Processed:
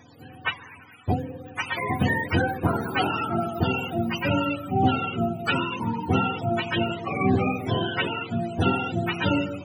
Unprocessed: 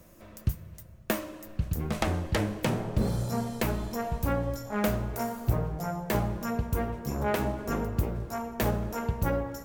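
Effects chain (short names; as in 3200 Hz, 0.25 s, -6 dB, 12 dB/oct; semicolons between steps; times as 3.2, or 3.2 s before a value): spectrum mirrored in octaves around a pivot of 400 Hz; gain +7.5 dB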